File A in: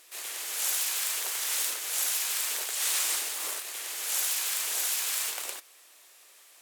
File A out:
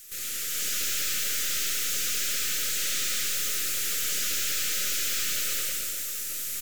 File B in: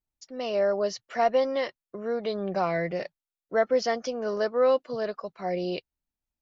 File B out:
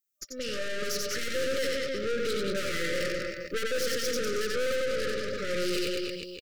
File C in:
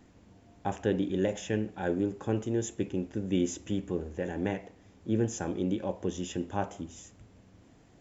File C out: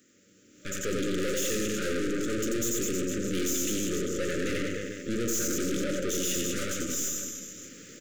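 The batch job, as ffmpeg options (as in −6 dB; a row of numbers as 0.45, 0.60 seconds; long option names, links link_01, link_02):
-filter_complex "[0:a]highpass=230,acrossover=split=5100[link_01][link_02];[link_02]acompressor=threshold=-42dB:ratio=4:attack=1:release=60[link_03];[link_01][link_03]amix=inputs=2:normalize=0,highshelf=frequency=2200:gain=8,aecho=1:1:90|193.5|312.5|449.4|606.8:0.631|0.398|0.251|0.158|0.1,dynaudnorm=framelen=480:gausssize=3:maxgain=15dB,aexciter=amount=1.2:drive=8.5:freq=5900,aeval=exprs='(tanh(25.1*val(0)+0.75)-tanh(0.75))/25.1':channel_layout=same,afftfilt=real='re*(1-between(b*sr/4096,600,1200))':imag='im*(1-between(b*sr/4096,600,1200))':win_size=4096:overlap=0.75"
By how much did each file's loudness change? +1.5, −3.0, +2.5 LU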